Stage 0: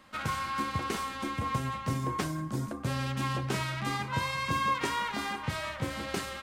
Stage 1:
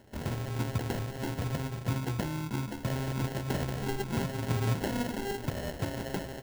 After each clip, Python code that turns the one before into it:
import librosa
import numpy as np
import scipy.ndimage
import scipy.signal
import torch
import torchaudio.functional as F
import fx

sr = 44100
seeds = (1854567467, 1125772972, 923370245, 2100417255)

y = fx.sample_hold(x, sr, seeds[0], rate_hz=1200.0, jitter_pct=0)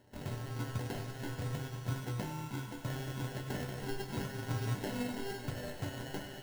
y = fx.resonator_bank(x, sr, root=43, chord='major', decay_s=0.21)
y = fx.echo_thinned(y, sr, ms=98, feedback_pct=84, hz=420.0, wet_db=-11.0)
y = y * librosa.db_to_amplitude(4.5)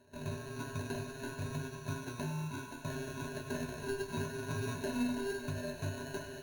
y = fx.ripple_eq(x, sr, per_octave=1.5, db=17)
y = y * librosa.db_to_amplitude(-3.0)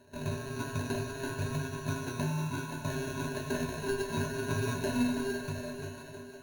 y = fx.fade_out_tail(x, sr, length_s=1.47)
y = fx.echo_split(y, sr, split_hz=340.0, low_ms=305, high_ms=499, feedback_pct=52, wet_db=-10.5)
y = y * librosa.db_to_amplitude(5.0)